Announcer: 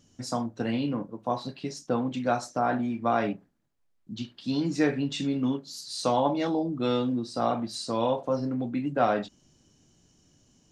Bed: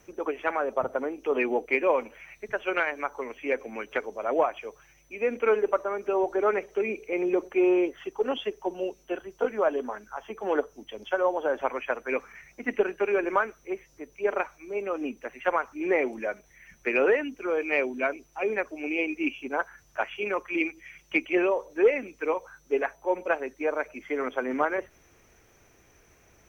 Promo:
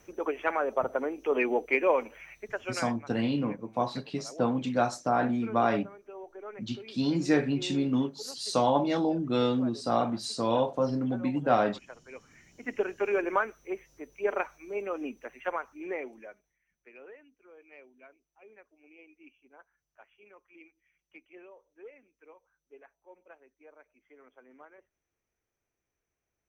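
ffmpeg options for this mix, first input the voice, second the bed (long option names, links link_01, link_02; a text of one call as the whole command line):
ffmpeg -i stem1.wav -i stem2.wav -filter_complex "[0:a]adelay=2500,volume=0dB[link_01];[1:a]volume=15.5dB,afade=type=out:start_time=2.24:duration=0.76:silence=0.125893,afade=type=in:start_time=12.12:duration=0.99:silence=0.149624,afade=type=out:start_time=14.69:duration=1.9:silence=0.0562341[link_02];[link_01][link_02]amix=inputs=2:normalize=0" out.wav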